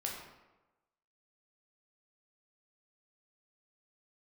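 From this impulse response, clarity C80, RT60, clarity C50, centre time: 5.0 dB, 1.1 s, 3.0 dB, 51 ms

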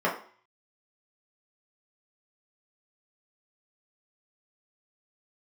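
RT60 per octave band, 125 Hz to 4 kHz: 0.30, 0.45, 0.45, 0.50, 0.50, 0.45 seconds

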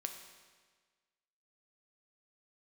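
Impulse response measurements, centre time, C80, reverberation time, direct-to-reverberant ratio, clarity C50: 29 ms, 8.5 dB, 1.5 s, 4.5 dB, 7.0 dB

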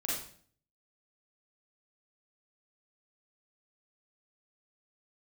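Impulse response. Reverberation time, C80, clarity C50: 0.50 s, 5.5 dB, −0.5 dB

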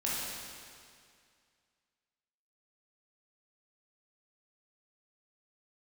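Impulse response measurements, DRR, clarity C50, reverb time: −7.0 dB, −2.5 dB, 2.2 s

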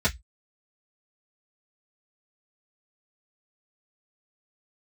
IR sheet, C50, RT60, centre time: 22.0 dB, 0.10 s, 10 ms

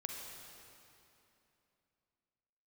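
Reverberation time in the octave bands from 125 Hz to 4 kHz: 3.2, 3.3, 3.0, 2.8, 2.7, 2.4 seconds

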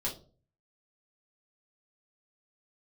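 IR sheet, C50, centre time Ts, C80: 10.5 dB, 20 ms, 16.5 dB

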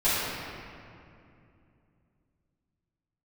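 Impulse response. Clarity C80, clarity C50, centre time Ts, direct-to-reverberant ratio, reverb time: −1.5 dB, −4.0 dB, 161 ms, −13.5 dB, 2.6 s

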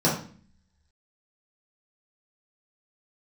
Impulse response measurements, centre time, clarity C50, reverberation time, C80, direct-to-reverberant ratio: 32 ms, 5.5 dB, 0.45 s, 10.0 dB, −7.0 dB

